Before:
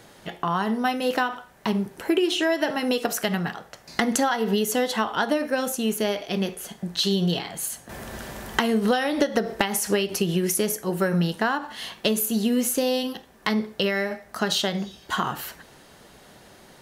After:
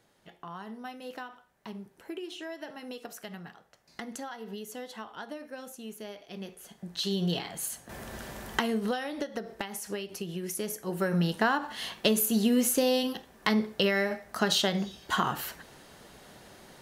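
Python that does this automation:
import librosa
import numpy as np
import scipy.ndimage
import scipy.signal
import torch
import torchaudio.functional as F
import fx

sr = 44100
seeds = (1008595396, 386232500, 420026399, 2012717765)

y = fx.gain(x, sr, db=fx.line((6.19, -17.5), (7.35, -5.0), (8.52, -5.0), (9.25, -13.0), (10.35, -13.0), (11.41, -2.0)))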